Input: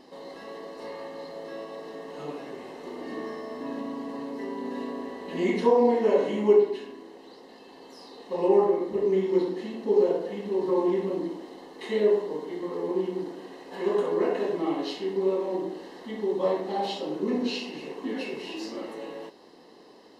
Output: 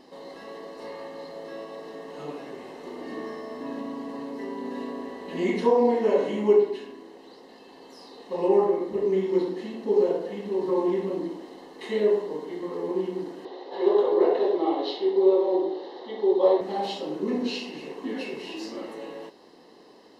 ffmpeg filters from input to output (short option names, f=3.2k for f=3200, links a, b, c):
-filter_complex "[0:a]asettb=1/sr,asplit=3[a][b][c];[a]atrim=end=13.454[d];[b]atrim=start=13.45:end=16.61,asetpts=PTS-STARTPTS,afade=t=in:d=0.004:c=qsin,afade=t=out:st=3.156:d=0.004:c=qsin,highpass=360,equalizer=f=370:t=q:w=4:g=9,equalizer=f=540:t=q:w=4:g=6,equalizer=f=810:t=q:w=4:g=7,equalizer=f=1.6k:t=q:w=4:g=-4,equalizer=f=2.5k:t=q:w=4:g=-7,equalizer=f=3.7k:t=q:w=4:g=8,lowpass=f=4.9k:w=0.5412,lowpass=f=4.9k:w=1.3066[e];[c]atrim=start=16.606[f];[d][e]acrossfade=d=0.004:c1=hsin:c2=qsin[g];[g][f]acrossfade=d=0.004:c1=qsin:c2=hsin"